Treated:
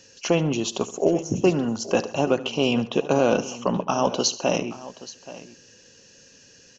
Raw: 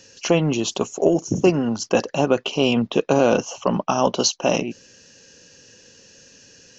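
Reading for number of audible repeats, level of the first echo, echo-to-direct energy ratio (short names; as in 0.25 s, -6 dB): 3, -17.0 dB, -13.0 dB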